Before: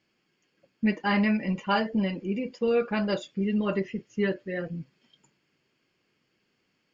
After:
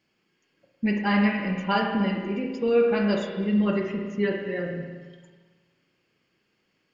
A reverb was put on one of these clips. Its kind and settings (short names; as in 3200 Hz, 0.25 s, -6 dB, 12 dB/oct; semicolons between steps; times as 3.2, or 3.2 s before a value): spring tank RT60 1.5 s, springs 34/53 ms, chirp 20 ms, DRR 2 dB